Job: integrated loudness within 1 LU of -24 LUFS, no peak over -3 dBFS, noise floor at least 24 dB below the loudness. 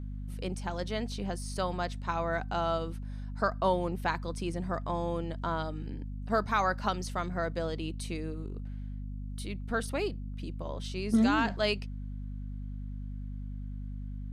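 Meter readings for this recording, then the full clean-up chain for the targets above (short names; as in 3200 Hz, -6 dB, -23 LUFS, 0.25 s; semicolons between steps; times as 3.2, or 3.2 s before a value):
hum 50 Hz; harmonics up to 250 Hz; hum level -36 dBFS; loudness -33.5 LUFS; peak -15.5 dBFS; loudness target -24.0 LUFS
-> notches 50/100/150/200/250 Hz; gain +9.5 dB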